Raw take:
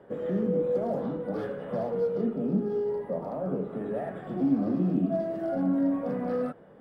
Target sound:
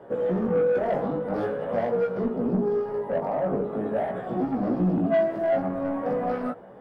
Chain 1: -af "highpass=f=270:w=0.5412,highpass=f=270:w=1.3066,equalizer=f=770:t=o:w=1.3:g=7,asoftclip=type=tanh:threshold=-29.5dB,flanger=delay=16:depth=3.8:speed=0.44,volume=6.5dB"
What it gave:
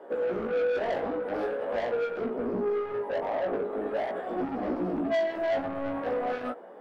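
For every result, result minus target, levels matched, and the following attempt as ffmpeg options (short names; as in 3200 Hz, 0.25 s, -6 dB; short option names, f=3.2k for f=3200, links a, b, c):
soft clip: distortion +5 dB; 250 Hz band -3.0 dB
-af "highpass=f=270:w=0.5412,highpass=f=270:w=1.3066,equalizer=f=770:t=o:w=1.3:g=7,asoftclip=type=tanh:threshold=-22.5dB,flanger=delay=16:depth=3.8:speed=0.44,volume=6.5dB"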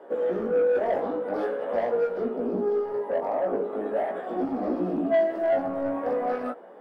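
250 Hz band -3.0 dB
-af "equalizer=f=770:t=o:w=1.3:g=7,asoftclip=type=tanh:threshold=-22.5dB,flanger=delay=16:depth=3.8:speed=0.44,volume=6.5dB"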